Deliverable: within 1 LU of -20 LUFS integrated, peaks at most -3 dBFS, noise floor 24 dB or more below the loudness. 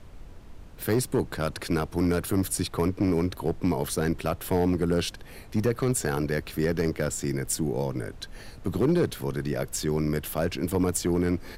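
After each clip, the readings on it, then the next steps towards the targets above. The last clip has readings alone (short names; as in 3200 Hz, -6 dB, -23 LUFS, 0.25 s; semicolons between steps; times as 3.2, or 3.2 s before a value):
clipped 1.0%; flat tops at -16.5 dBFS; noise floor -45 dBFS; noise floor target -52 dBFS; loudness -27.5 LUFS; peak -16.5 dBFS; loudness target -20.0 LUFS
-> clip repair -16.5 dBFS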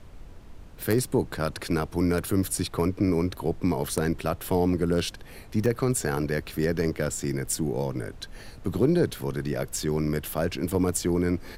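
clipped 0.0%; noise floor -45 dBFS; noise floor target -51 dBFS
-> noise print and reduce 6 dB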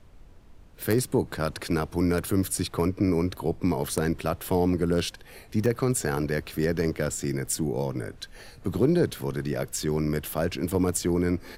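noise floor -50 dBFS; noise floor target -51 dBFS
-> noise print and reduce 6 dB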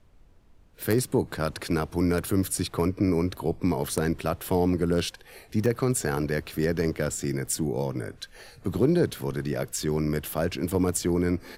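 noise floor -55 dBFS; loudness -27.0 LUFS; peak -7.5 dBFS; loudness target -20.0 LUFS
-> gain +7 dB; limiter -3 dBFS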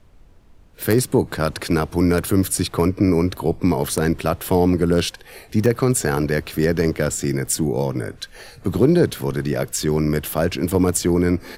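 loudness -20.0 LUFS; peak -3.0 dBFS; noise floor -48 dBFS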